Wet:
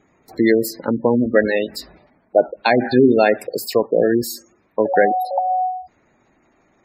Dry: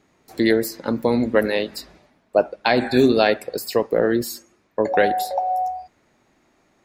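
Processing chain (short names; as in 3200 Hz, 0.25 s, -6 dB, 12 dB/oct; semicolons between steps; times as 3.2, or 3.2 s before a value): spectral gate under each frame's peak -20 dB strong; 1.01–1.56 dynamic EQ 1900 Hz, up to +4 dB, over -36 dBFS, Q 2.3; gain +3 dB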